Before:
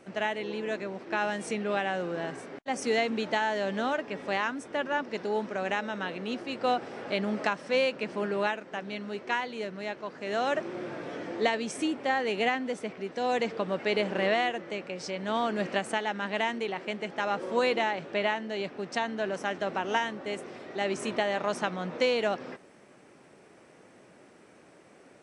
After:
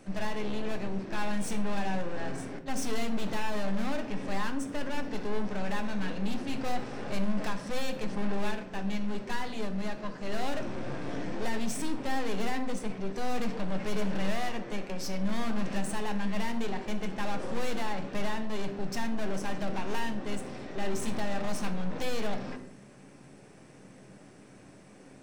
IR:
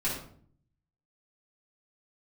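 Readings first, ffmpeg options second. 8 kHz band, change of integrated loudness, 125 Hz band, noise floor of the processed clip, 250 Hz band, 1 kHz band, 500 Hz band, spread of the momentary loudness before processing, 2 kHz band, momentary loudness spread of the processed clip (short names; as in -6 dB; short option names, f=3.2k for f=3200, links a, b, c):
+2.5 dB, -4.0 dB, +5.0 dB, -52 dBFS, +1.5 dB, -6.0 dB, -7.0 dB, 9 LU, -7.0 dB, 8 LU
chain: -filter_complex "[0:a]bass=f=250:g=10,treble=f=4k:g=6,aeval=exprs='(tanh(56.2*val(0)+0.65)-tanh(0.65))/56.2':c=same,asplit=2[a][b];[1:a]atrim=start_sample=2205[c];[b][c]afir=irnorm=-1:irlink=0,volume=-10.5dB[d];[a][d]amix=inputs=2:normalize=0"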